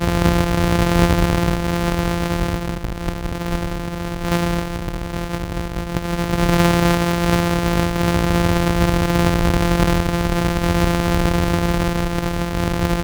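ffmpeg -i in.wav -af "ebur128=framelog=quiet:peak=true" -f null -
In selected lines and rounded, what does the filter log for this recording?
Integrated loudness:
  I:         -19.3 LUFS
  Threshold: -29.3 LUFS
Loudness range:
  LRA:         6.4 LU
  Threshold: -39.5 LUFS
  LRA low:   -24.0 LUFS
  LRA high:  -17.6 LUFS
True peak:
  Peak:       -1.0 dBFS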